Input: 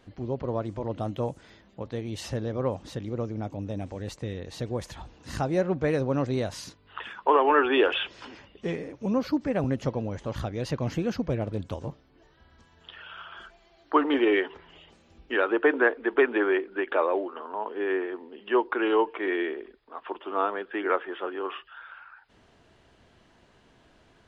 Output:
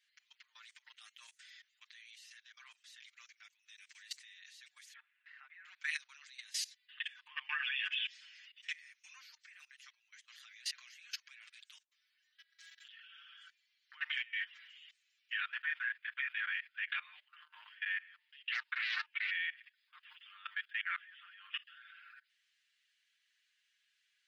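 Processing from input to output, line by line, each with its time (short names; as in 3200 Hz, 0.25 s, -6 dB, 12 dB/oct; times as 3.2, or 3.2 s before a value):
2.15–2.57 level quantiser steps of 19 dB
3.5–4.08 steep high-pass 850 Hz
4.93–5.65 LPF 2100 Hz 24 dB/oct
6.46–8.14 notch 1400 Hz, Q 6
8.99–10.29 fade out, to -8.5 dB
11.8–13 negative-ratio compressor -47 dBFS, ratio -0.5
13.93–14.43 negative-ratio compressor -25 dBFS, ratio -0.5
15.47–17.65 doubler 25 ms -9 dB
18.33–19.31 Doppler distortion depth 0.49 ms
20–20.71 tilt +2 dB/oct
whole clip: steep high-pass 1800 Hz 36 dB/oct; level quantiser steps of 21 dB; comb 6.6 ms, depth 98%; gain +2.5 dB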